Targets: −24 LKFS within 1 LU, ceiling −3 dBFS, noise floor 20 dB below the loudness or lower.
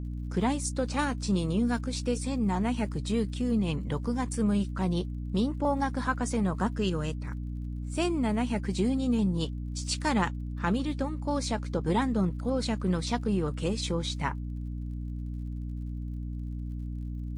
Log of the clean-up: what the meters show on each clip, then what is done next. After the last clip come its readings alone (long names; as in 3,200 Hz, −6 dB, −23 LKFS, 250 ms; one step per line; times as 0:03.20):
crackle rate 51 per second; mains hum 60 Hz; hum harmonics up to 300 Hz; level of the hum −32 dBFS; integrated loudness −30.5 LKFS; sample peak −12.5 dBFS; target loudness −24.0 LKFS
→ click removal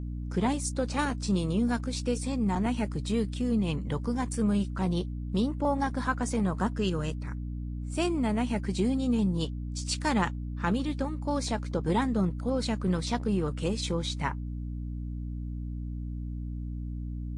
crackle rate 0.17 per second; mains hum 60 Hz; hum harmonics up to 300 Hz; level of the hum −32 dBFS
→ hum removal 60 Hz, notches 5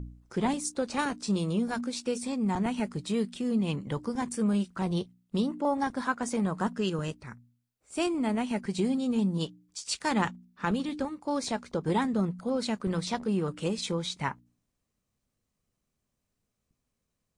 mains hum none found; integrated loudness −31.0 LKFS; sample peak −13.0 dBFS; target loudness −24.0 LKFS
→ level +7 dB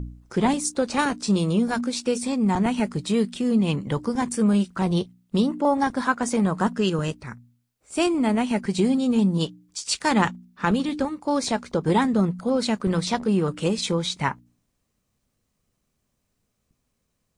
integrated loudness −24.0 LKFS; sample peak −6.0 dBFS; background noise floor −75 dBFS